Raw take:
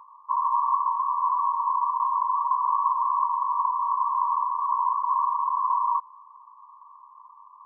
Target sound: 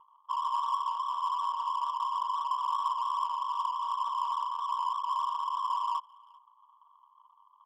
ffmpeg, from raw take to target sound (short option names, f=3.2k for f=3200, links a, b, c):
-filter_complex "[0:a]aemphasis=mode=reproduction:type=75kf,adynamicsmooth=sensitivity=4:basefreq=800,asplit=2[a][b];[b]adelay=390,highpass=300,lowpass=3.4k,asoftclip=type=hard:threshold=-22.5dB,volume=-26dB[c];[a][c]amix=inputs=2:normalize=0,volume=-6dB"